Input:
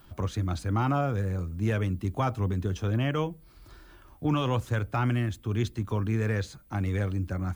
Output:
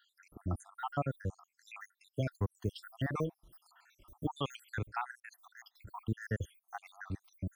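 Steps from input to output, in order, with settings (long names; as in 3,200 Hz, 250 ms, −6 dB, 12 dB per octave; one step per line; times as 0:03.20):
time-frequency cells dropped at random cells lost 77%
0:02.54–0:04.61: high-shelf EQ 5,300 Hz +8.5 dB
level −4 dB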